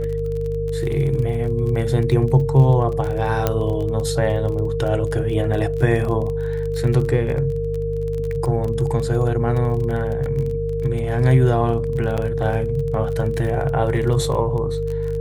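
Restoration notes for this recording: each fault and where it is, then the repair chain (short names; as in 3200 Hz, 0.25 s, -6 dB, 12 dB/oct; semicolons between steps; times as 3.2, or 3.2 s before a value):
crackle 24/s -26 dBFS
hum 50 Hz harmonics 3 -26 dBFS
tone 460 Hz -23 dBFS
3.47 pop -5 dBFS
12.17–12.18 gap 7.4 ms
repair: de-click; de-hum 50 Hz, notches 3; notch 460 Hz, Q 30; interpolate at 12.17, 7.4 ms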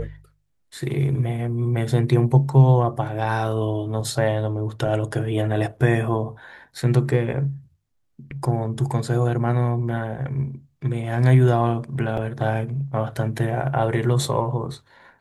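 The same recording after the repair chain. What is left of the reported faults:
3.47 pop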